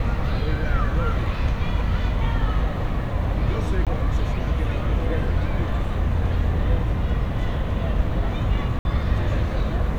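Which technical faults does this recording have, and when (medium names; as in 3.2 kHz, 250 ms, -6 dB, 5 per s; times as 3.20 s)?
3.85–3.87 s: dropout 17 ms
8.79–8.85 s: dropout 61 ms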